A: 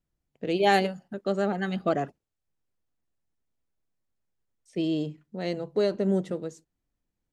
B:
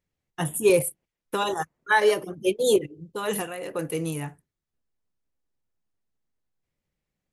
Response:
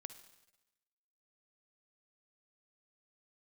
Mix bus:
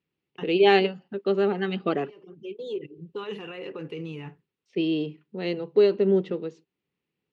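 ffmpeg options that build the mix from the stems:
-filter_complex "[0:a]lowshelf=frequency=140:gain=-10.5,volume=2dB,asplit=2[link_01][link_02];[1:a]acompressor=threshold=-25dB:ratio=6,alimiter=level_in=3dB:limit=-24dB:level=0:latency=1:release=30,volume=-3dB,volume=-2dB[link_03];[link_02]apad=whole_len=323084[link_04];[link_03][link_04]sidechaincompress=threshold=-41dB:ratio=10:attack=16:release=444[link_05];[link_01][link_05]amix=inputs=2:normalize=0,highpass=120,equalizer=frequency=170:width_type=q:width=4:gain=3,equalizer=frequency=400:width_type=q:width=4:gain=8,equalizer=frequency=650:width_type=q:width=4:gain=-9,equalizer=frequency=1600:width_type=q:width=4:gain=-3,equalizer=frequency=2700:width_type=q:width=4:gain=7,lowpass=frequency=4300:width=0.5412,lowpass=frequency=4300:width=1.3066"

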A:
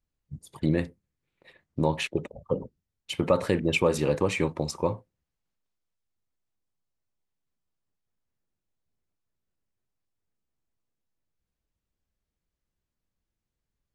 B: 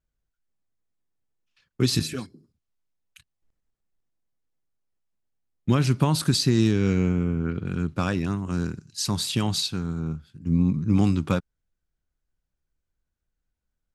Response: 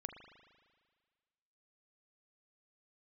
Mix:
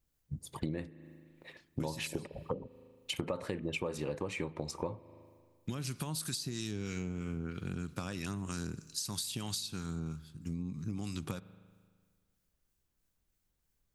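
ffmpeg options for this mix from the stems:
-filter_complex "[0:a]volume=1dB,asplit=2[link_01][link_02];[link_02]volume=-12.5dB[link_03];[1:a]crystalizer=i=4:c=0,acrossover=split=1000[link_04][link_05];[link_04]aeval=exprs='val(0)*(1-0.5/2+0.5/2*cos(2*PI*3.1*n/s))':channel_layout=same[link_06];[link_05]aeval=exprs='val(0)*(1-0.5/2-0.5/2*cos(2*PI*3.1*n/s))':channel_layout=same[link_07];[link_06][link_07]amix=inputs=2:normalize=0,acompressor=threshold=-26dB:ratio=6,volume=-6dB,asplit=2[link_08][link_09];[link_09]volume=-8.5dB[link_10];[2:a]atrim=start_sample=2205[link_11];[link_03][link_10]amix=inputs=2:normalize=0[link_12];[link_12][link_11]afir=irnorm=-1:irlink=0[link_13];[link_01][link_08][link_13]amix=inputs=3:normalize=0,acompressor=threshold=-34dB:ratio=6"

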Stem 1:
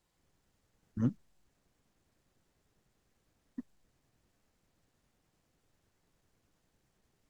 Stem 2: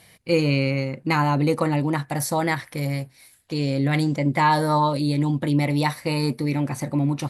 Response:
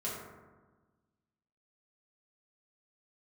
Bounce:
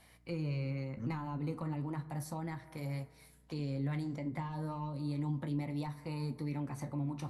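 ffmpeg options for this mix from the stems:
-filter_complex "[0:a]aeval=exprs='val(0)+0.00158*(sin(2*PI*60*n/s)+sin(2*PI*2*60*n/s)/2+sin(2*PI*3*60*n/s)/3+sin(2*PI*4*60*n/s)/4+sin(2*PI*5*60*n/s)/5)':channel_layout=same,volume=-4.5dB[link_01];[1:a]equalizer=frequency=1000:width_type=o:width=1.3:gain=7.5,asoftclip=type=tanh:threshold=-5.5dB,volume=-8.5dB,asplit=2[link_02][link_03];[link_03]volume=-18dB[link_04];[2:a]atrim=start_sample=2205[link_05];[link_04][link_05]afir=irnorm=-1:irlink=0[link_06];[link_01][link_02][link_06]amix=inputs=3:normalize=0,acrossover=split=260[link_07][link_08];[link_08]acompressor=threshold=-40dB:ratio=6[link_09];[link_07][link_09]amix=inputs=2:normalize=0,flanger=delay=9.1:depth=9.4:regen=-64:speed=0.34:shape=triangular"

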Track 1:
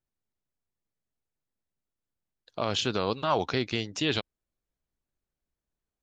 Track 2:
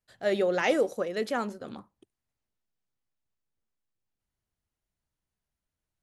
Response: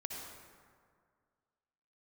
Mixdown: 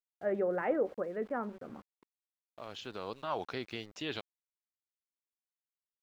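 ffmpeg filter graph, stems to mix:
-filter_complex "[0:a]equalizer=frequency=74:width=0.31:gain=-8,volume=-7.5dB[link_01];[1:a]lowpass=frequency=1800:width=0.5412,lowpass=frequency=1800:width=1.3066,volume=-5.5dB,asplit=2[link_02][link_03];[link_03]apad=whole_len=265589[link_04];[link_01][link_04]sidechaincompress=threshold=-49dB:ratio=10:attack=6.4:release=1440[link_05];[link_05][link_02]amix=inputs=2:normalize=0,aeval=exprs='val(0)*gte(abs(val(0)),0.00224)':channel_layout=same,highshelf=frequency=4400:gain=-11"

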